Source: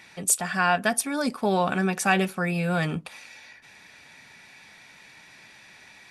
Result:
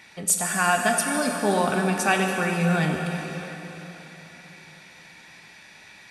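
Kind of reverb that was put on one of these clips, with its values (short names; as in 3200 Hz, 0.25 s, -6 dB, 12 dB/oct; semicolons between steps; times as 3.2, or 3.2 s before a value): plate-style reverb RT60 4 s, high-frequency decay 0.95×, DRR 2 dB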